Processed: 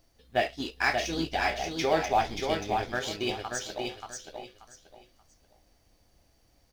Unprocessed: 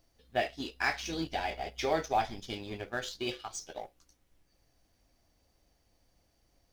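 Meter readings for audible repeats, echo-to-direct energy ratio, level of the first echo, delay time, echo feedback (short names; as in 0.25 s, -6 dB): 3, -4.0 dB, -4.5 dB, 0.582 s, 25%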